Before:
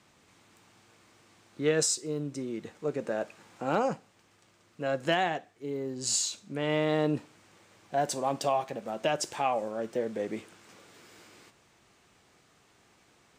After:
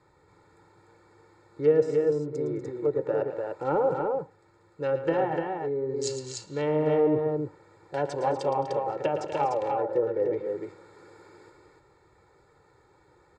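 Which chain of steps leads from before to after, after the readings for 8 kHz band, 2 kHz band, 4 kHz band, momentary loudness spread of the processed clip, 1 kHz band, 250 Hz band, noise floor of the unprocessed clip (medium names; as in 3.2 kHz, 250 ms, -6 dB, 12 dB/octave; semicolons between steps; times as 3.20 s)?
-11.0 dB, -4.5 dB, -9.0 dB, 10 LU, +2.0 dB, +2.0 dB, -64 dBFS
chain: local Wiener filter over 15 samples; comb 2.2 ms, depth 87%; low-pass that closes with the level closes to 860 Hz, closed at -23 dBFS; peaking EQ 8.2 kHz +5.5 dB 1.4 oct; on a send: multi-tap echo 112/212/243/297 ms -10.5/-19.5/-12/-4 dB; on the sum: trim +1.5 dB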